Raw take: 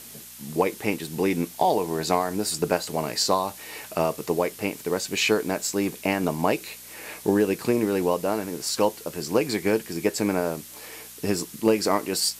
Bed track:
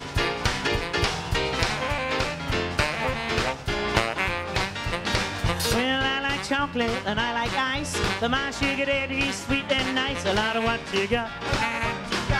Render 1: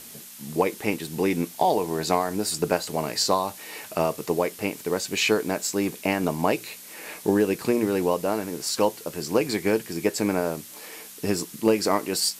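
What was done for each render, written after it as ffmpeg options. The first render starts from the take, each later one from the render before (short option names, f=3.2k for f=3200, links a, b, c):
-af "bandreject=f=60:t=h:w=4,bandreject=f=120:t=h:w=4"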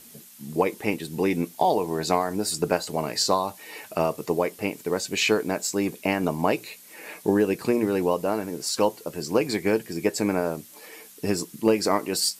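-af "afftdn=nr=7:nf=-43"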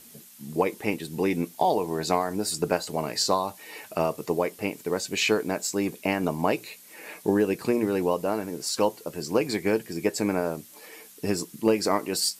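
-af "volume=-1.5dB"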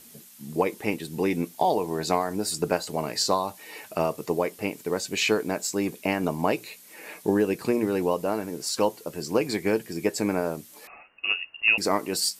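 -filter_complex "[0:a]asettb=1/sr,asplit=3[a][b][c];[a]atrim=end=10.874[d];[b]atrim=start=10.87:end=11.78,asetpts=PTS-STARTPTS,afade=t=in:d=0.004:c=qsin,afade=t=out:st=0.906:d=0.004:c=qsin,lowpass=f=2.6k:t=q:w=0.5098,lowpass=f=2.6k:t=q:w=0.6013,lowpass=f=2.6k:t=q:w=0.9,lowpass=f=2.6k:t=q:w=2.563,afreqshift=-3000[e];[c]atrim=start=11.776[f];[d][e]acrossfade=d=0.004:c1=hsin:c2=qsin[g];[g][f]acrossfade=d=0.004:c1=qsin:c2=hsin"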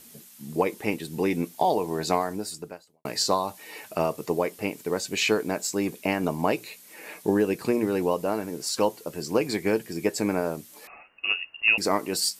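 -filter_complex "[0:a]asplit=2[a][b];[a]atrim=end=3.05,asetpts=PTS-STARTPTS,afade=t=out:st=2.24:d=0.81:c=qua[c];[b]atrim=start=3.05,asetpts=PTS-STARTPTS,afade=t=in:d=0.004:c=hsin[d];[c][d]concat=n=2:v=0:a=1"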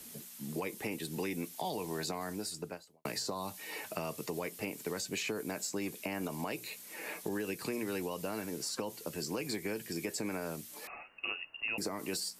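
-filter_complex "[0:a]alimiter=limit=-16dB:level=0:latency=1:release=47,acrossover=split=130|260|1600|7000[a][b][c][d][e];[a]acompressor=threshold=-55dB:ratio=4[f];[b]acompressor=threshold=-45dB:ratio=4[g];[c]acompressor=threshold=-40dB:ratio=4[h];[d]acompressor=threshold=-42dB:ratio=4[i];[e]acompressor=threshold=-44dB:ratio=4[j];[f][g][h][i][j]amix=inputs=5:normalize=0"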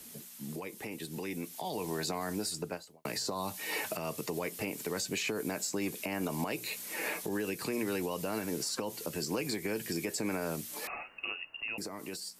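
-af "alimiter=level_in=7.5dB:limit=-24dB:level=0:latency=1:release=287,volume=-7.5dB,dynaudnorm=f=340:g=9:m=7.5dB"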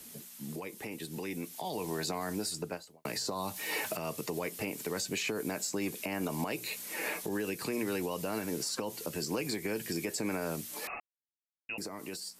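-filter_complex "[0:a]asettb=1/sr,asplit=3[a][b][c];[a]atrim=end=3.564[d];[b]atrim=start=3.56:end=3.96,asetpts=PTS-STARTPTS,afade=t=in:d=0.004:c=qsin,afade=t=out:st=0.396:d=0.004:c=qsin,aeval=exprs='val(0)+0.5*0.00422*sgn(val(0))':c=same[e];[c]atrim=start=3.956[f];[d][e]acrossfade=d=0.004:c1=hsin:c2=qsin[g];[g][f]acrossfade=d=0.004:c1=qsin:c2=hsin,asplit=3[h][i][j];[h]atrim=end=11,asetpts=PTS-STARTPTS,afade=t=out:st=10.996:d=0.004:c=hsin[k];[i]atrim=start=11:end=11.69,asetpts=PTS-STARTPTS,volume=0[l];[j]atrim=start=11.69,asetpts=PTS-STARTPTS,afade=t=in:d=0.004:c=hsin[m];[k][l][m]concat=n=3:v=0:a=1"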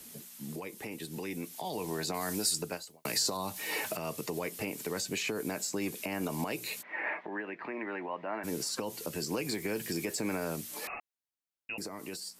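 -filter_complex "[0:a]asettb=1/sr,asplit=3[a][b][c];[a]atrim=end=2.144[d];[b]atrim=start=2.14:end=3.37,asetpts=PTS-STARTPTS,afade=t=in:d=0.004:c=qsin,afade=t=out:st=1.226:d=0.004:c=qsin,highshelf=f=2.7k:g=8.5[e];[c]atrim=start=3.366[f];[d][e]acrossfade=d=0.004:c1=hsin:c2=qsin[g];[g][f]acrossfade=d=0.004:c1=qsin:c2=hsin,asplit=3[h][i][j];[h]afade=t=out:st=6.81:d=0.02[k];[i]highpass=340,equalizer=f=460:t=q:w=4:g=-9,equalizer=f=660:t=q:w=4:g=4,equalizer=f=940:t=q:w=4:g=4,equalizer=f=1.9k:t=q:w=4:g=7,lowpass=f=2.2k:w=0.5412,lowpass=f=2.2k:w=1.3066,afade=t=in:st=6.81:d=0.02,afade=t=out:st=8.43:d=0.02[l];[j]afade=t=in:st=8.43:d=0.02[m];[k][l][m]amix=inputs=3:normalize=0,asettb=1/sr,asplit=3[n][o][p];[n]atrim=end=9.484[q];[o]atrim=start=9.48:end=10.45,asetpts=PTS-STARTPTS,afade=t=in:d=0.004:c=qsin,afade=t=out:st=0.966:d=0.004:c=qsin,aeval=exprs='val(0)+0.5*0.00282*sgn(val(0))':c=same[r];[p]atrim=start=10.446[s];[q][r]acrossfade=d=0.004:c1=hsin:c2=qsin[t];[t][s]acrossfade=d=0.004:c1=qsin:c2=hsin"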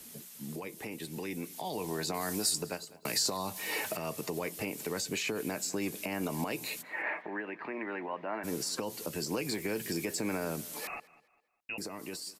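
-filter_complex "[0:a]asplit=2[a][b];[b]adelay=202,lowpass=f=4.6k:p=1,volume=-20dB,asplit=2[c][d];[d]adelay=202,lowpass=f=4.6k:p=1,volume=0.38,asplit=2[e][f];[f]adelay=202,lowpass=f=4.6k:p=1,volume=0.38[g];[a][c][e][g]amix=inputs=4:normalize=0"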